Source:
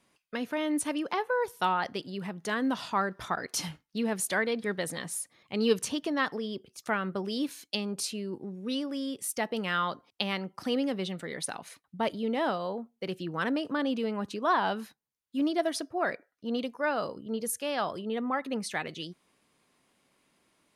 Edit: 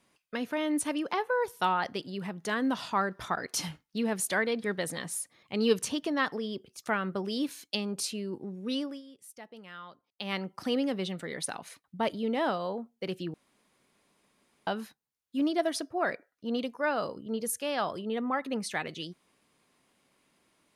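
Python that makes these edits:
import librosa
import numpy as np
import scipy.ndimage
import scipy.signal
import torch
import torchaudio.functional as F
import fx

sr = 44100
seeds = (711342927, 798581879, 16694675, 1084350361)

y = fx.edit(x, sr, fx.fade_down_up(start_s=8.83, length_s=1.52, db=-16.5, fade_s=0.19),
    fx.room_tone_fill(start_s=13.34, length_s=1.33), tone=tone)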